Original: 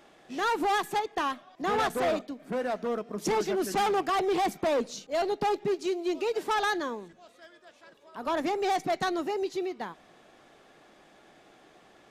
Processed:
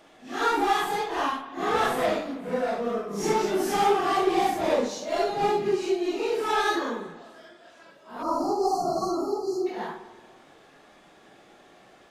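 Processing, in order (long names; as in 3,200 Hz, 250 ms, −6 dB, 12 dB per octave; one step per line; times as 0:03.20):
random phases in long frames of 200 ms
time-frequency box erased 0:08.22–0:09.67, 1,400–4,100 Hz
spring reverb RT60 1.5 s, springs 48/59 ms, chirp 35 ms, DRR 11 dB
level +3 dB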